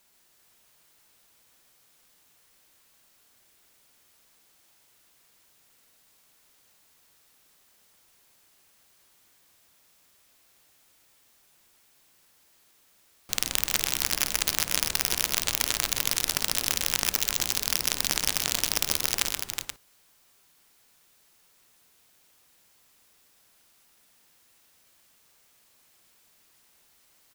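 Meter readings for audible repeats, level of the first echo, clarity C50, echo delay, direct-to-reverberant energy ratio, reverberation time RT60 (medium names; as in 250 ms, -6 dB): 5, -10.0 dB, no reverb, 52 ms, no reverb, no reverb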